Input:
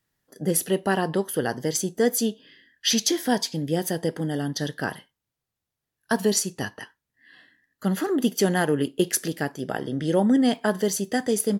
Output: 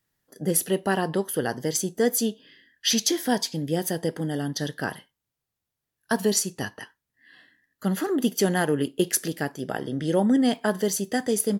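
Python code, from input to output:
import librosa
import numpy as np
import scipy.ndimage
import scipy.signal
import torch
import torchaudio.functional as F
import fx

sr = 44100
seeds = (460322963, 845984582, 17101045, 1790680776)

y = fx.high_shelf(x, sr, hz=10000.0, db=3.5)
y = y * librosa.db_to_amplitude(-1.0)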